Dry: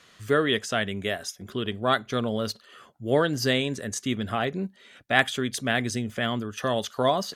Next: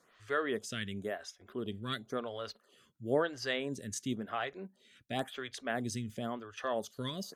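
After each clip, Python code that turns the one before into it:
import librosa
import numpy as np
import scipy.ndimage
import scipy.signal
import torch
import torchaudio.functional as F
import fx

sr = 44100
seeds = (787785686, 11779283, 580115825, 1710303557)

y = fx.stagger_phaser(x, sr, hz=0.96)
y = F.gain(torch.from_numpy(y), -7.0).numpy()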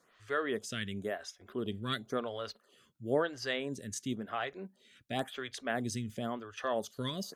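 y = fx.rider(x, sr, range_db=10, speed_s=2.0)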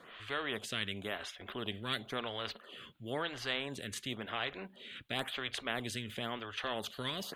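y = fx.high_shelf_res(x, sr, hz=4300.0, db=-10.0, q=3.0)
y = fx.spectral_comp(y, sr, ratio=2.0)
y = F.gain(torch.from_numpy(y), -2.5).numpy()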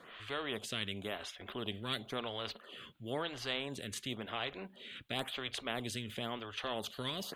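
y = fx.dynamic_eq(x, sr, hz=1700.0, q=1.7, threshold_db=-51.0, ratio=4.0, max_db=-5)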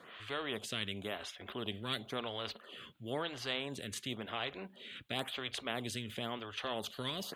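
y = scipy.signal.sosfilt(scipy.signal.butter(2, 55.0, 'highpass', fs=sr, output='sos'), x)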